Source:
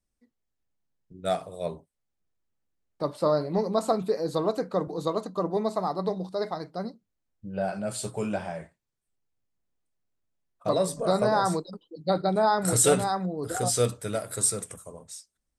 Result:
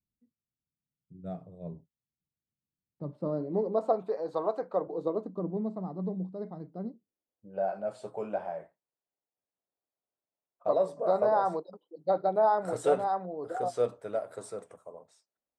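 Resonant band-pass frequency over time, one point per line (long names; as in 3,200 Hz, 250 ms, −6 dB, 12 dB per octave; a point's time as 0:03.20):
resonant band-pass, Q 1.4
0:03.05 150 Hz
0:04.10 780 Hz
0:04.68 780 Hz
0:05.54 190 Hz
0:06.60 190 Hz
0:07.49 660 Hz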